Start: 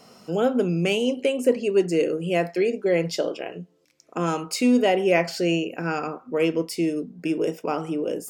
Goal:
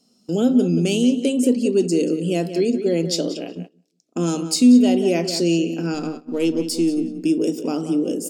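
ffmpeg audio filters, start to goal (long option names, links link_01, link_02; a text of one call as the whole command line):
ffmpeg -i in.wav -filter_complex "[0:a]asettb=1/sr,asplit=3[link_01][link_02][link_03];[link_01]atrim=end=5.944[link_04];[link_02]atrim=start=5.94:end=7.14,asetpts=PTS-STARTPTS,afade=type=in:duration=0.004:curve=qsin,afade=type=out:start_time=1.196:duration=0.004:curve=qsin,aeval=exprs='if(lt(val(0),0),0.708*val(0),val(0))':channel_layout=same[link_05];[link_03]atrim=start=7.136[link_06];[link_04][link_05]acrossfade=duration=0.004:curve1=hsin:curve2=qsin[link_07];[link_07][link_06]acrossfade=duration=0.004:curve1=qsin:curve2=hsin,equalizer=frequency=125:width_type=o:width=1:gain=-5,equalizer=frequency=250:width_type=o:width=1:gain=11,equalizer=frequency=500:width_type=o:width=1:gain=-4,equalizer=frequency=1000:width_type=o:width=1:gain=-8,equalizer=frequency=2000:width_type=o:width=1:gain=-12,equalizer=frequency=4000:width_type=o:width=1:gain=7,equalizer=frequency=8000:width_type=o:width=1:gain=7,asplit=2[link_08][link_09];[link_09]adelay=182,lowpass=frequency=3600:poles=1,volume=-10.5dB,asplit=2[link_10][link_11];[link_11]adelay=182,lowpass=frequency=3600:poles=1,volume=0.21,asplit=2[link_12][link_13];[link_13]adelay=182,lowpass=frequency=3600:poles=1,volume=0.21[link_14];[link_08][link_10][link_12][link_14]amix=inputs=4:normalize=0,agate=range=-17dB:threshold=-35dB:ratio=16:detection=peak,asplit=2[link_15][link_16];[link_16]alimiter=limit=-14dB:level=0:latency=1:release=187,volume=0.5dB[link_17];[link_15][link_17]amix=inputs=2:normalize=0,volume=-3.5dB" out.wav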